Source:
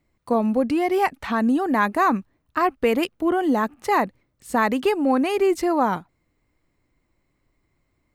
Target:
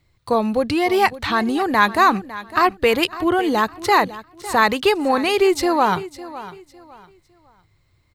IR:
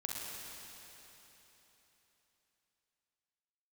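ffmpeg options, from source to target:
-filter_complex "[0:a]equalizer=frequency=100:width_type=o:width=0.67:gain=10,equalizer=frequency=250:width_type=o:width=0.67:gain=-10,equalizer=frequency=630:width_type=o:width=0.67:gain=-4,equalizer=frequency=4000:width_type=o:width=0.67:gain=9,asplit=2[link_01][link_02];[link_02]aecho=0:1:555|1110|1665:0.158|0.0444|0.0124[link_03];[link_01][link_03]amix=inputs=2:normalize=0,volume=6dB"

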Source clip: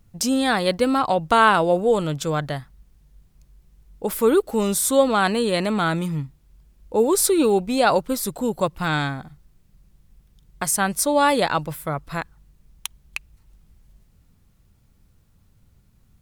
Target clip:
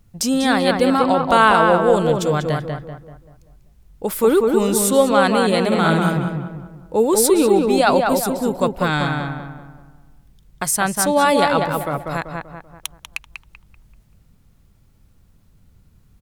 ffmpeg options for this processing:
ffmpeg -i in.wav -filter_complex "[0:a]asettb=1/sr,asplit=3[link_01][link_02][link_03];[link_01]atrim=end=5.674[link_04];[link_02]atrim=start=5.67:end=6.17,asetpts=PTS-STARTPTS,afade=type=in:duration=0.004:curve=qsin,afade=type=out:start_time=0.496:duration=0.004:curve=qsin,asplit=2[link_05][link_06];[link_06]adelay=49,volume=-2dB[link_07];[link_05][link_07]amix=inputs=2:normalize=0,atrim=end_sample=22050[link_08];[link_03]atrim=start=6.166[link_09];[link_04][link_08]acrossfade=duration=0.004:curve1=hsin:curve2=qsin[link_10];[link_10][link_09]acrossfade=duration=0.004:curve1=qsin:curve2=hsin,asplit=2[link_11][link_12];[link_12]adelay=193,lowpass=frequency=2100:poles=1,volume=-3dB,asplit=2[link_13][link_14];[link_14]adelay=193,lowpass=frequency=2100:poles=1,volume=0.44,asplit=2[link_15][link_16];[link_16]adelay=193,lowpass=frequency=2100:poles=1,volume=0.44,asplit=2[link_17][link_18];[link_18]adelay=193,lowpass=frequency=2100:poles=1,volume=0.44,asplit=2[link_19][link_20];[link_20]adelay=193,lowpass=frequency=2100:poles=1,volume=0.44,asplit=2[link_21][link_22];[link_22]adelay=193,lowpass=frequency=2100:poles=1,volume=0.44[link_23];[link_11][link_13][link_15][link_17][link_19][link_21][link_23]amix=inputs=7:normalize=0,volume=2dB" out.wav

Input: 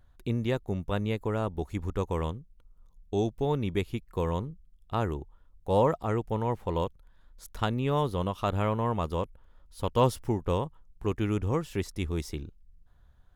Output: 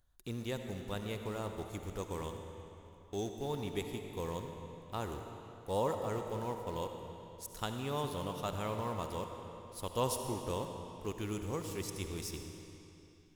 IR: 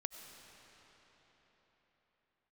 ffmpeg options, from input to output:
-filter_complex "[0:a]bass=frequency=250:gain=-3,treble=frequency=4000:gain=13,asplit=2[link_01][link_02];[link_02]acrusher=bits=5:mix=0:aa=0.000001,volume=-8.5dB[link_03];[link_01][link_03]amix=inputs=2:normalize=0[link_04];[1:a]atrim=start_sample=2205,asetrate=66150,aresample=44100[link_05];[link_04][link_05]afir=irnorm=-1:irlink=0,volume=-5.5dB"

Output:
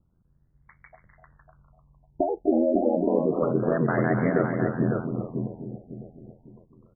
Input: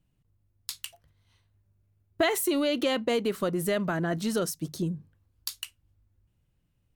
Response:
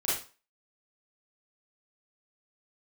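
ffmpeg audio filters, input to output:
-filter_complex "[0:a]asplit=2[link_01][link_02];[link_02]adelay=551,lowpass=frequency=4600:poles=1,volume=-6dB,asplit=2[link_03][link_04];[link_04]adelay=551,lowpass=frequency=4600:poles=1,volume=0.33,asplit=2[link_05][link_06];[link_06]adelay=551,lowpass=frequency=4600:poles=1,volume=0.33,asplit=2[link_07][link_08];[link_08]adelay=551,lowpass=frequency=4600:poles=1,volume=0.33[link_09];[link_03][link_05][link_07][link_09]amix=inputs=4:normalize=0[link_10];[link_01][link_10]amix=inputs=2:normalize=0,alimiter=limit=-19.5dB:level=0:latency=1:release=154,asplit=2[link_11][link_12];[link_12]aecho=0:1:250.7|288.6:0.355|0.355[link_13];[link_11][link_13]amix=inputs=2:normalize=0,aeval=exprs='val(0)*sin(2*PI*42*n/s)':channel_layout=same,afftfilt=real='re*lt(b*sr/1024,830*pow(2300/830,0.5+0.5*sin(2*PI*0.29*pts/sr)))':imag='im*lt(b*sr/1024,830*pow(2300/830,0.5+0.5*sin(2*PI*0.29*pts/sr)))':win_size=1024:overlap=0.75,volume=8dB"

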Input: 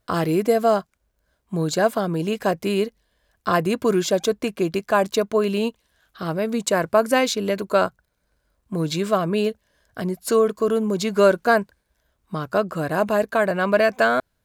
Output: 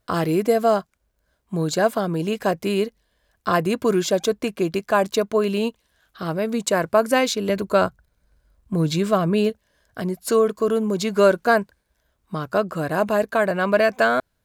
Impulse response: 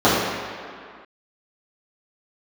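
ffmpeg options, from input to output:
-filter_complex "[0:a]asettb=1/sr,asplit=3[link_01][link_02][link_03];[link_01]atrim=end=7.494[link_04];[link_02]atrim=start=7.49:end=9.5,asetpts=PTS-STARTPTS,afade=type=in:duration=0.004:curve=qsin,afade=type=out:start_time=2.006:duration=0.004:curve=qsin,lowshelf=frequency=130:gain=11.5[link_05];[link_03]atrim=start=9.496[link_06];[link_04][link_05]acrossfade=duration=0.004:curve1=hsin:curve2=qsin[link_07];[link_07][link_06]acrossfade=duration=0.004:curve1=qsin:curve2=hsin"

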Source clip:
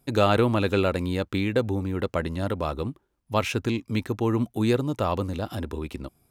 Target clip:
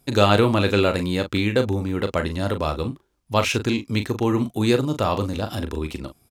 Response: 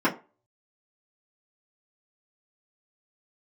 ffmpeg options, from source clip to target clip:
-filter_complex "[0:a]equalizer=frequency=5300:width=0.57:gain=5,asplit=2[link_01][link_02];[link_02]adelay=39,volume=-9dB[link_03];[link_01][link_03]amix=inputs=2:normalize=0,volume=3dB"

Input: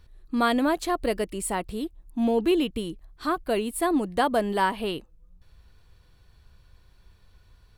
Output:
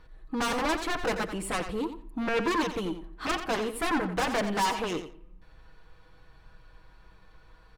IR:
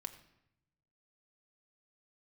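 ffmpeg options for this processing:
-filter_complex "[0:a]asplit=2[link_01][link_02];[link_02]highpass=frequency=720:poles=1,volume=10dB,asoftclip=type=tanh:threshold=-11dB[link_03];[link_01][link_03]amix=inputs=2:normalize=0,lowpass=frequency=1900:poles=1,volume=-6dB,aecho=1:1:6.3:0.53,aeval=exprs='0.335*(cos(1*acos(clip(val(0)/0.335,-1,1)))-cos(1*PI/2))+0.0944*(cos(7*acos(clip(val(0)/0.335,-1,1)))-cos(7*PI/2))':channel_layout=same,asoftclip=type=tanh:threshold=-25.5dB,aecho=1:1:88|176:0.316|0.0506,asplit=2[link_04][link_05];[1:a]atrim=start_sample=2205,lowpass=2500[link_06];[link_05][link_06]afir=irnorm=-1:irlink=0,volume=-1dB[link_07];[link_04][link_07]amix=inputs=2:normalize=0"

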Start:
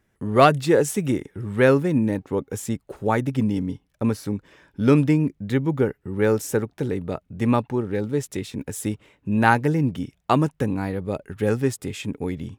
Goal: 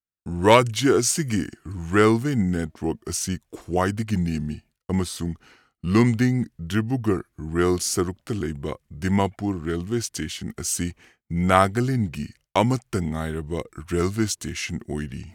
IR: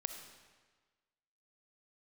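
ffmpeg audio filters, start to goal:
-af "areverse,acompressor=mode=upward:threshold=-41dB:ratio=2.5,areverse,highshelf=frequency=2200:gain=10,agate=range=-33dB:threshold=-41dB:ratio=3:detection=peak,asetrate=36162,aresample=44100,volume=-2dB"

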